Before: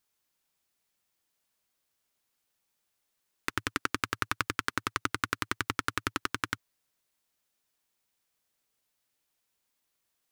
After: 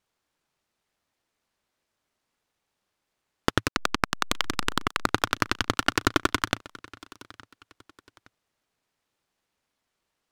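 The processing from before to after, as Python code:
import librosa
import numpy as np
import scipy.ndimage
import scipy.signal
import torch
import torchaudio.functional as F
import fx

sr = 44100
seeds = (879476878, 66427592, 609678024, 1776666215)

p1 = fx.level_steps(x, sr, step_db=11)
p2 = x + F.gain(torch.from_numpy(p1), 1.0).numpy()
p3 = scipy.signal.sosfilt(scipy.signal.bessel(2, 4500.0, 'lowpass', norm='mag', fs=sr, output='sos'), p2)
p4 = fx.backlash(p3, sr, play_db=-19.0, at=(3.68, 5.07))
p5 = fx.comb(p4, sr, ms=2.8, depth=0.74, at=(5.79, 6.39))
p6 = p5 + fx.echo_feedback(p5, sr, ms=867, feedback_pct=33, wet_db=-21.0, dry=0)
p7 = fx.noise_mod_delay(p6, sr, seeds[0], noise_hz=1600.0, depth_ms=0.074)
y = F.gain(torch.from_numpy(p7), 2.0).numpy()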